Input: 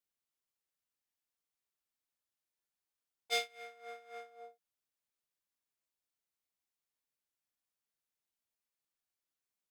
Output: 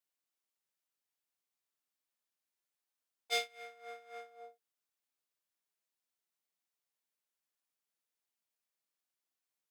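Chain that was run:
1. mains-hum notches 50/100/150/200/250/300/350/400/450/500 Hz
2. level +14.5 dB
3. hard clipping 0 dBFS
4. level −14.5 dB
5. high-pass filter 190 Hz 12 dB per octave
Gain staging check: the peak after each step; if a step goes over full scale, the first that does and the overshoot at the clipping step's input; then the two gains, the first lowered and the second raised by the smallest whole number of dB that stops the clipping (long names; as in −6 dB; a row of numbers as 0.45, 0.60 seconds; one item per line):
−19.5, −5.0, −5.0, −19.5, −19.5 dBFS
no step passes full scale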